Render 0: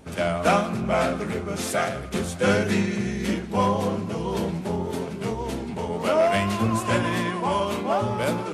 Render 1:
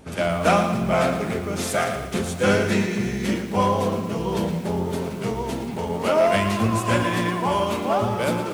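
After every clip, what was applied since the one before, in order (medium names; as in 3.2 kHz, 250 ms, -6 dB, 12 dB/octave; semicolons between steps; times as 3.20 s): bit-crushed delay 114 ms, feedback 55%, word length 7-bit, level -10 dB; trim +1.5 dB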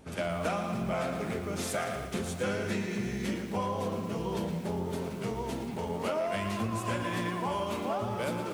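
compression, threshold -21 dBFS, peak gain reduction 8 dB; trim -7 dB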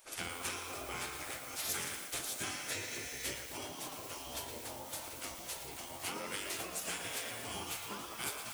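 pre-emphasis filter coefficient 0.8; spectral gate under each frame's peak -10 dB weak; trim +8 dB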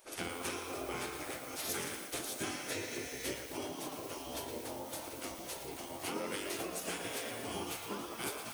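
peaking EQ 340 Hz +9 dB 2.1 oct; band-stop 7.4 kHz, Q 16; trim -1.5 dB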